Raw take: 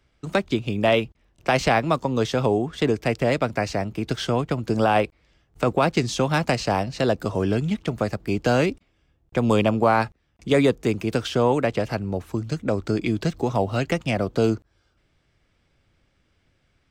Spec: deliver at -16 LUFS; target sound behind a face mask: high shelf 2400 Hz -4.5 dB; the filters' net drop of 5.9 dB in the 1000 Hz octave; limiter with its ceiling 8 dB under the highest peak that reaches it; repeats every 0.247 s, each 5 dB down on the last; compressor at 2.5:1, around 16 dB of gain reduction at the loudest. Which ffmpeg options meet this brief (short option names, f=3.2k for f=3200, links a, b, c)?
-af "equalizer=f=1k:t=o:g=-8,acompressor=threshold=-41dB:ratio=2.5,alimiter=level_in=5dB:limit=-24dB:level=0:latency=1,volume=-5dB,highshelf=f=2.4k:g=-4.5,aecho=1:1:247|494|741|988|1235|1482|1729:0.562|0.315|0.176|0.0988|0.0553|0.031|0.0173,volume=24dB"